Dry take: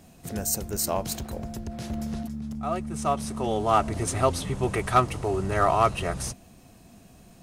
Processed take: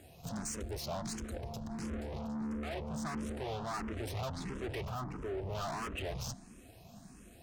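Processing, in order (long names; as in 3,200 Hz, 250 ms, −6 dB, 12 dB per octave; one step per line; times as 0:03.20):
treble cut that deepens with the level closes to 1,700 Hz, closed at −18 dBFS
0:01.82–0:03.39: low-shelf EQ 370 Hz +9 dB
tube saturation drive 37 dB, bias 0.55
0:04.87–0:05.55: octave-band graphic EQ 2,000/4,000/8,000 Hz −5/−8/−6 dB
frequency shifter mixed with the dry sound +1.5 Hz
level +2.5 dB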